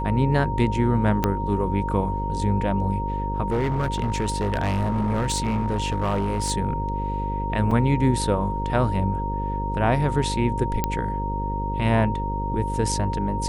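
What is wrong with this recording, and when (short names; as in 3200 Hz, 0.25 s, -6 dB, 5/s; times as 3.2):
buzz 50 Hz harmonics 11 -28 dBFS
tone 930 Hz -28 dBFS
1.24 pop -7 dBFS
3.48–6.52 clipped -19 dBFS
7.71 gap 4.1 ms
10.84 pop -8 dBFS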